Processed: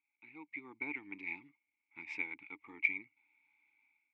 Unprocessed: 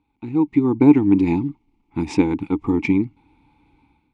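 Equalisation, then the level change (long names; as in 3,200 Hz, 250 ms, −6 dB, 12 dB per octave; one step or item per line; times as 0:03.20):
resonant band-pass 2,200 Hz, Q 8.8
0.0 dB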